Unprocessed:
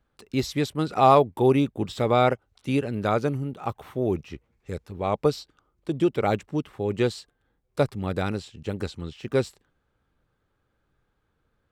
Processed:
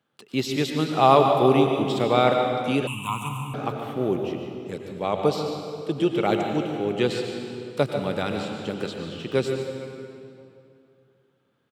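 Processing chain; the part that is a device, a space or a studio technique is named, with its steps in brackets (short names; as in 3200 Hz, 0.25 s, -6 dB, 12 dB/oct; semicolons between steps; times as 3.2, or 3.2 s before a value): PA in a hall (HPF 130 Hz 24 dB/oct; bell 3100 Hz +7 dB 0.49 oct; echo 0.145 s -11.5 dB; reverb RT60 2.6 s, pre-delay 89 ms, DRR 4 dB); 2.87–3.54 EQ curve 130 Hz 0 dB, 630 Hz -29 dB, 1000 Hz +12 dB, 1600 Hz -27 dB, 2800 Hz +9 dB, 4700 Hz -27 dB, 7600 Hz +14 dB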